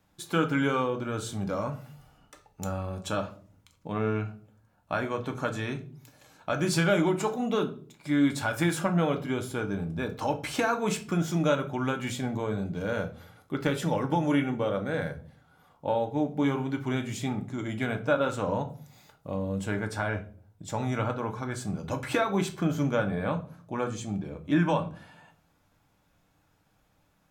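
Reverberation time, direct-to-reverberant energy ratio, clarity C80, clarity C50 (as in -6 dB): 0.45 s, 4.0 dB, 18.5 dB, 14.0 dB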